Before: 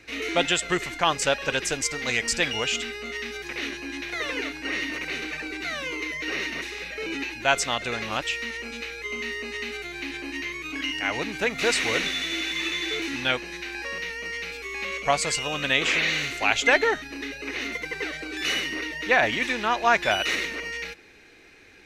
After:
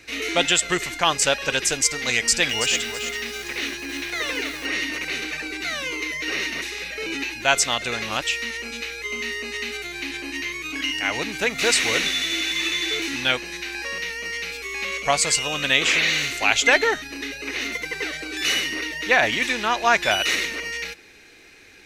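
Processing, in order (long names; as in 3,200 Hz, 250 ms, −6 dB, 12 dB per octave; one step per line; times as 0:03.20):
high-shelf EQ 3,600 Hz +8.5 dB
0:02.16–0:04.66: feedback echo at a low word length 330 ms, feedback 35%, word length 6 bits, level −8 dB
level +1 dB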